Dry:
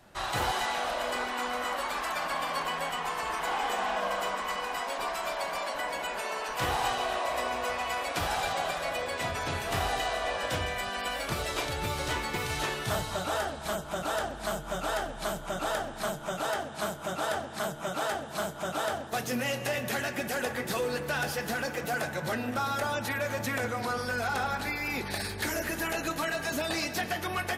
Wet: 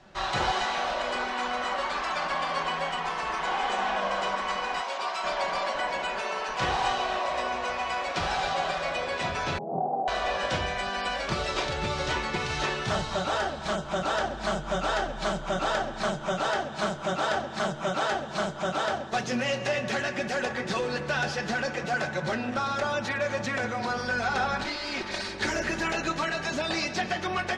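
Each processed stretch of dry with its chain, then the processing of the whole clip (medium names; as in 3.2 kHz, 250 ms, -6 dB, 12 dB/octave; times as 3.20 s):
4.81–5.24 s: high-pass 660 Hz 6 dB/octave + peaking EQ 1.8 kHz -4.5 dB 0.37 oct
9.58–10.08 s: Chebyshev band-pass 140–830 Hz, order 5 + flutter echo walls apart 4.2 m, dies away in 0.2 s + loudspeaker Doppler distortion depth 0.1 ms
24.64–25.41 s: comb filter that takes the minimum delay 3.2 ms + bass shelf 120 Hz -8 dB
whole clip: low-pass 6.4 kHz 24 dB/octave; comb 5.3 ms, depth 34%; gain riding 2 s; trim +2.5 dB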